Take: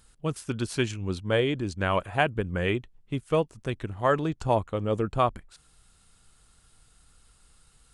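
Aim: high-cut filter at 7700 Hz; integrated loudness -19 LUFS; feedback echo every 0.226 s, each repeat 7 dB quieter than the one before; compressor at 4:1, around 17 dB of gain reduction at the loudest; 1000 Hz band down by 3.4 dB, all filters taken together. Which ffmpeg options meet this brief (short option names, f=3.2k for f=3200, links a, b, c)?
-af "lowpass=7.7k,equalizer=f=1k:t=o:g=-4.5,acompressor=threshold=-41dB:ratio=4,aecho=1:1:226|452|678|904|1130:0.447|0.201|0.0905|0.0407|0.0183,volume=23.5dB"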